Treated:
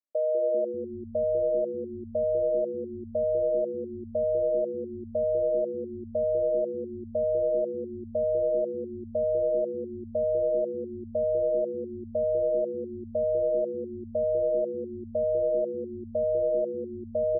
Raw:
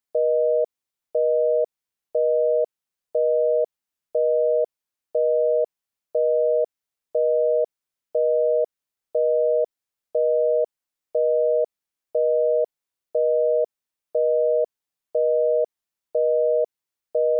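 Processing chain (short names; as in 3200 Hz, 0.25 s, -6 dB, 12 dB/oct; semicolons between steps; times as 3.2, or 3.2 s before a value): double band-pass 420 Hz, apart 0.88 oct; frequency-shifting echo 0.196 s, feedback 58%, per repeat -130 Hz, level -8.5 dB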